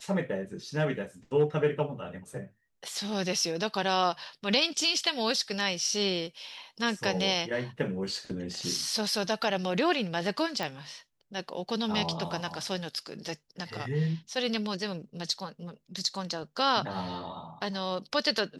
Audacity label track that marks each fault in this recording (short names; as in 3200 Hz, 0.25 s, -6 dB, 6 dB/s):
10.630000	10.630000	pop